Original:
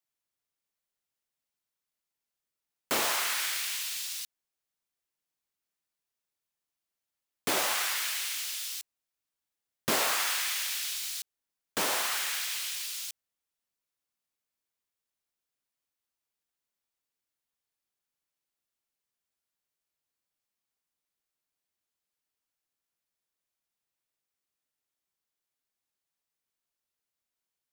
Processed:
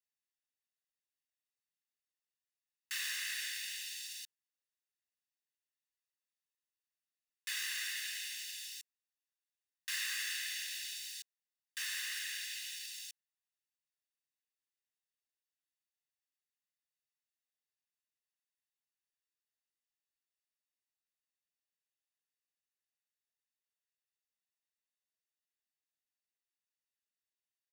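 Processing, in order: steep high-pass 1.5 kHz 48 dB/octave; treble shelf 9.9 kHz -8.5 dB; comb 1.1 ms, depth 74%; trim -8.5 dB

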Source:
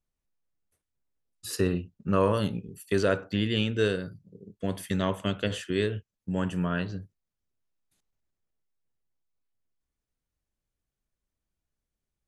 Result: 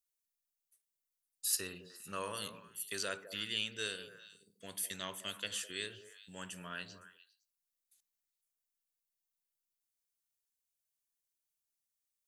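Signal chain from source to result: pre-emphasis filter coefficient 0.97; repeats whose band climbs or falls 102 ms, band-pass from 190 Hz, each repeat 1.4 oct, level -7 dB; trim +3.5 dB

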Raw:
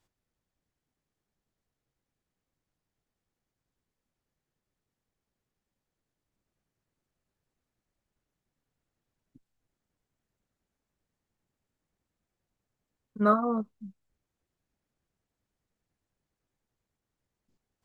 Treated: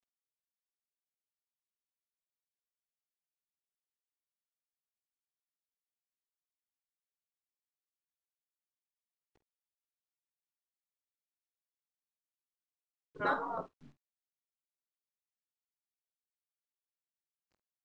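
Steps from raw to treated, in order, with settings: spectral gate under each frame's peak -15 dB weak; word length cut 12-bit, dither none; distance through air 120 m; doubling 49 ms -13.5 dB; trim +7 dB

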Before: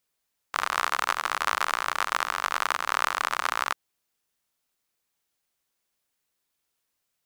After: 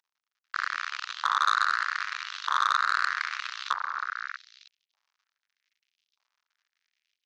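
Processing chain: CVSD coder 32 kbps; level rider gain up to 7 dB; repeats whose band climbs or falls 316 ms, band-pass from 680 Hz, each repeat 1.4 oct, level -4.5 dB; LFO high-pass saw up 0.81 Hz 930–3400 Hz; transformer saturation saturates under 2.4 kHz

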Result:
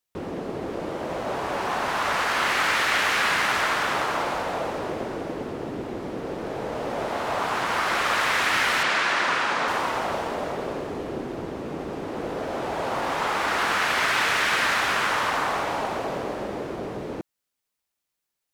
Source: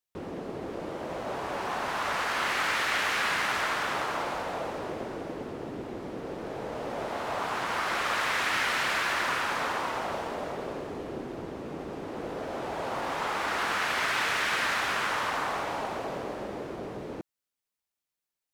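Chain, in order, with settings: 8.83–9.68 s: band-pass 140–6900 Hz; trim +5.5 dB

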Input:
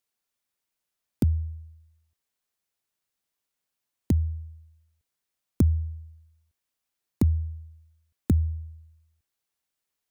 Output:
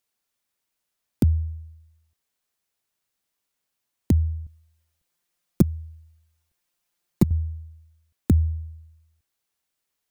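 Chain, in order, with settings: 4.46–7.31 s: comb 5.7 ms, depth 85%; trim +3.5 dB

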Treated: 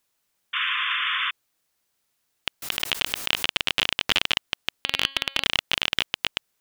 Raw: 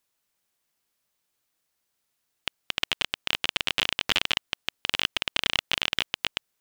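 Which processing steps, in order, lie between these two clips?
0.53–1.31 s: painted sound noise 1–3.6 kHz -29 dBFS; 4.72–5.44 s: de-hum 273.7 Hz, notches 17; in parallel at -9 dB: saturation -17 dBFS, distortion -6 dB; 2.62–3.46 s: on the sum: swell ahead of each attack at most 93 dB/s; trim +1 dB

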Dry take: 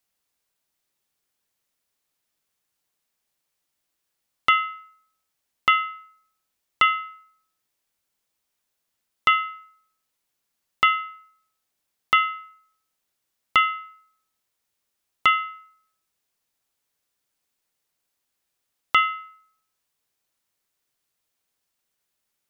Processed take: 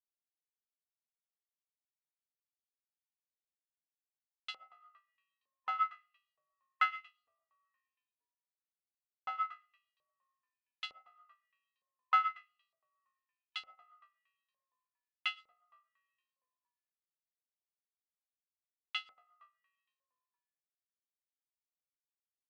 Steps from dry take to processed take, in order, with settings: single-diode clipper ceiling -23 dBFS; on a send: frequency-shifting echo 232 ms, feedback 57%, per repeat -54 Hz, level -11 dB; on the sum: reverberation RT60 0.40 s, pre-delay 70 ms, DRR 8.5 dB; LFO band-pass saw up 1.1 Hz 540–4300 Hz; upward expansion 2.5:1, over -43 dBFS; trim -2 dB

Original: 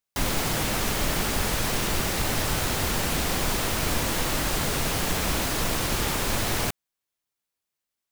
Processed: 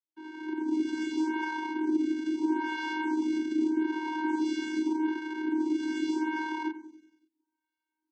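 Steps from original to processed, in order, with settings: fade-in on the opening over 1.00 s; in parallel at -1 dB: peak limiter -24 dBFS, peak gain reduction 11.5 dB; on the sum: decimation with a swept rate 25×, swing 160% 0.61 Hz; vocoder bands 16, square 313 Hz; on a send: feedback delay 94 ms, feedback 58%, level -15 dB; on the sum: lamp-driven phase shifter 0.81 Hz

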